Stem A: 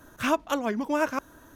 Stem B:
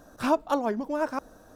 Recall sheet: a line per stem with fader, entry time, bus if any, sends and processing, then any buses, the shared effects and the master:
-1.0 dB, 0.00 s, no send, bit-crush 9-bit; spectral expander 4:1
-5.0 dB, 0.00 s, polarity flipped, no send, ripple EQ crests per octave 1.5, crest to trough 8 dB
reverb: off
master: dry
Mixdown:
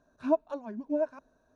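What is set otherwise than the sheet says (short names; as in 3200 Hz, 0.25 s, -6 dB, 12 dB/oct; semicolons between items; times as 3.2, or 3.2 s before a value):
stem B -5.0 dB -> -16.5 dB; master: extra air absorption 81 m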